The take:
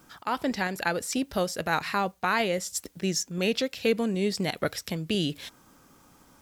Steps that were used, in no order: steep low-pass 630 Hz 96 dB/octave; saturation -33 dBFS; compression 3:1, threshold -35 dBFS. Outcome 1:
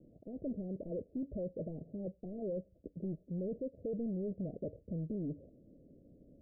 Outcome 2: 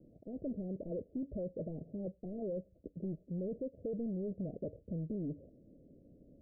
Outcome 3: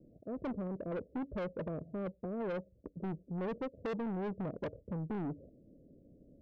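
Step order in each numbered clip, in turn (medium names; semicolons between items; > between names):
saturation > compression > steep low-pass; saturation > steep low-pass > compression; steep low-pass > saturation > compression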